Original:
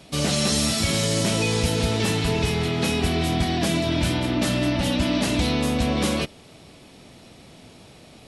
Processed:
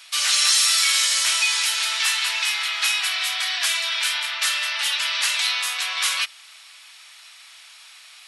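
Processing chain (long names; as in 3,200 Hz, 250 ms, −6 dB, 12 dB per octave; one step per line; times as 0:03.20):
inverse Chebyshev high-pass filter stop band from 280 Hz, stop band 70 dB
hard clipping −16 dBFS, distortion −42 dB
level +7.5 dB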